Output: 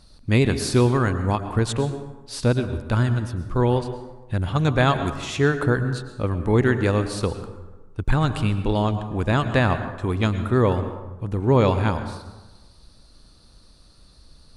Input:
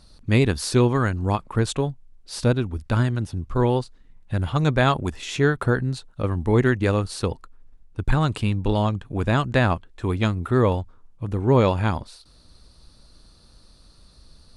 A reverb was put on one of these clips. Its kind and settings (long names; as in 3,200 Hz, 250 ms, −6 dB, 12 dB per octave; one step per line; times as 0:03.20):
dense smooth reverb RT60 1.2 s, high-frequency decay 0.5×, pre-delay 95 ms, DRR 9.5 dB